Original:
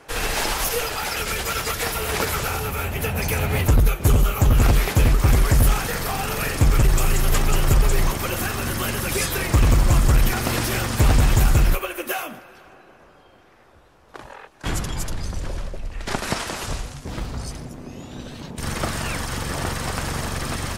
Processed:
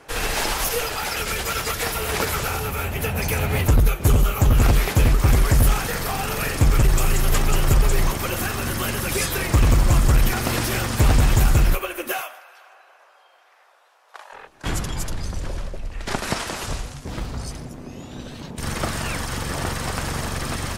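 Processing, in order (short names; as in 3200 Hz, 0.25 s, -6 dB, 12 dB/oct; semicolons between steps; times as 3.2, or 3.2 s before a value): 12.21–14.33 HPF 630 Hz 24 dB/oct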